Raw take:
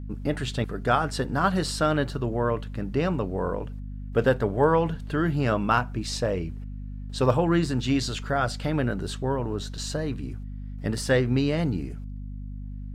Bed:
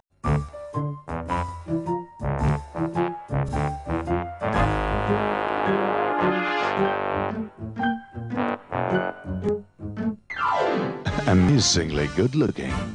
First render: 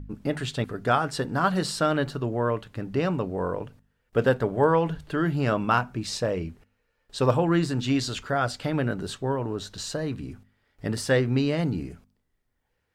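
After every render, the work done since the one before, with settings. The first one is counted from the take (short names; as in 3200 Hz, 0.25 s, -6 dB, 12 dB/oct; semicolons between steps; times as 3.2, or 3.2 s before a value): de-hum 50 Hz, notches 5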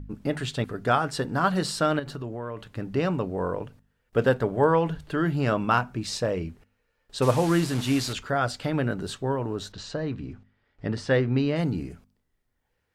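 1.99–2.66 compressor, threshold -30 dBFS; 7.22–8.13 delta modulation 64 kbps, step -29.5 dBFS; 9.72–11.56 air absorption 130 m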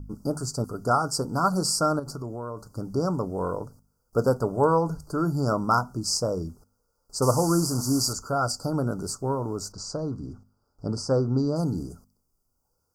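Chebyshev band-stop 1400–4700 Hz, order 5; high shelf 3100 Hz +11 dB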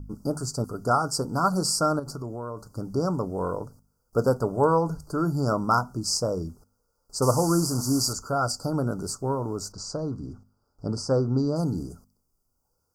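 nothing audible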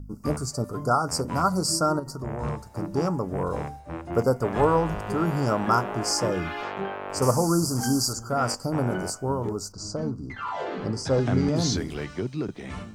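add bed -9 dB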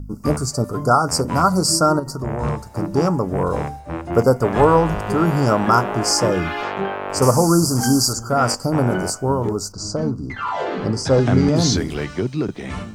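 gain +7.5 dB; limiter -3 dBFS, peak gain reduction 2 dB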